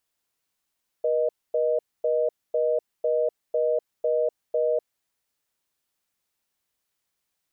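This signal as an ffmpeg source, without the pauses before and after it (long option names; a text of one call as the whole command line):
ffmpeg -f lavfi -i "aevalsrc='0.0708*(sin(2*PI*480*t)+sin(2*PI*620*t))*clip(min(mod(t,0.5),0.25-mod(t,0.5))/0.005,0,1)':duration=3.81:sample_rate=44100" out.wav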